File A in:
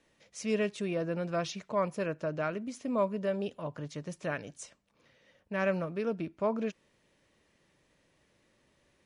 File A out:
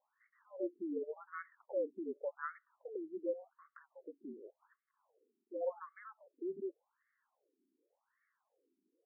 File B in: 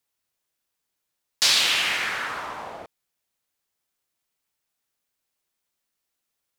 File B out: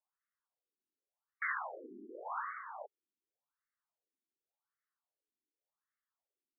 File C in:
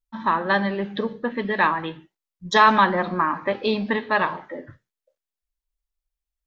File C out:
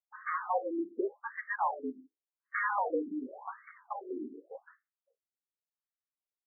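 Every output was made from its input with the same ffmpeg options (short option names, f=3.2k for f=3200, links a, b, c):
-af "highpass=f=180:t=q:w=0.5412,highpass=f=180:t=q:w=1.307,lowpass=f=2.5k:t=q:w=0.5176,lowpass=f=2.5k:t=q:w=0.7071,lowpass=f=2.5k:t=q:w=1.932,afreqshift=-60,aeval=exprs='0.168*(abs(mod(val(0)/0.168+3,4)-2)-1)':c=same,afftfilt=real='re*between(b*sr/1024,280*pow(1600/280,0.5+0.5*sin(2*PI*0.88*pts/sr))/1.41,280*pow(1600/280,0.5+0.5*sin(2*PI*0.88*pts/sr))*1.41)':imag='im*between(b*sr/1024,280*pow(1600/280,0.5+0.5*sin(2*PI*0.88*pts/sr))/1.41,280*pow(1600/280,0.5+0.5*sin(2*PI*0.88*pts/sr))*1.41)':win_size=1024:overlap=0.75,volume=-4dB"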